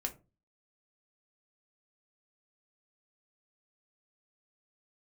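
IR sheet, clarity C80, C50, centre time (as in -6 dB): 23.0 dB, 16.0 dB, 8 ms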